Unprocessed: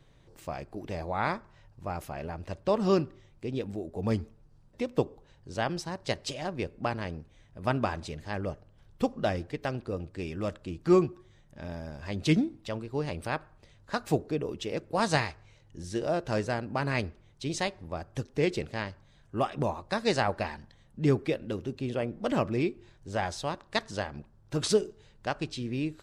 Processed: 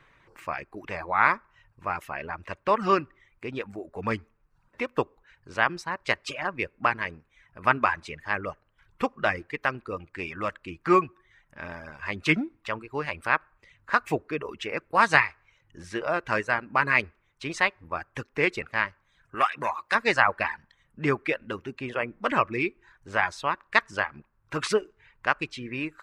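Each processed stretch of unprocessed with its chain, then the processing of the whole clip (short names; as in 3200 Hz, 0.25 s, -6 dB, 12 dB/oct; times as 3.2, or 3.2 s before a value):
19.35–19.95 HPF 47 Hz + tilt +2.5 dB/oct + core saturation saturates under 1200 Hz
whole clip: band shelf 1600 Hz +12 dB; reverb removal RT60 0.65 s; tone controls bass -6 dB, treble -4 dB; gain +1 dB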